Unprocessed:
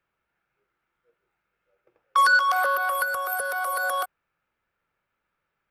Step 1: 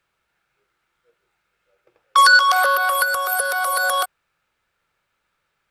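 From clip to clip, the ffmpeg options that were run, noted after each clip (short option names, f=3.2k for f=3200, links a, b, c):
-af "equalizer=f=250:t=o:w=1:g=-3,equalizer=f=4k:t=o:w=1:g=7,equalizer=f=8k:t=o:w=1:g=6,volume=5.5dB"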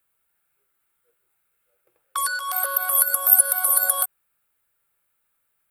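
-af "acompressor=threshold=-18dB:ratio=4,aexciter=amount=12.5:drive=2.8:freq=8.3k,volume=-8dB"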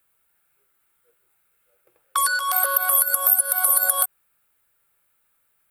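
-af "acompressor=threshold=-19dB:ratio=6,volume=4.5dB"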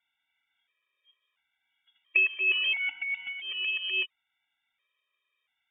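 -af "highshelf=f=2.1k:g=-7,lowpass=f=3.1k:t=q:w=0.5098,lowpass=f=3.1k:t=q:w=0.6013,lowpass=f=3.1k:t=q:w=0.9,lowpass=f=3.1k:t=q:w=2.563,afreqshift=-3700,afftfilt=real='re*gt(sin(2*PI*0.73*pts/sr)*(1-2*mod(floor(b*sr/1024/330),2)),0)':imag='im*gt(sin(2*PI*0.73*pts/sr)*(1-2*mod(floor(b*sr/1024/330),2)),0)':win_size=1024:overlap=0.75,volume=2dB"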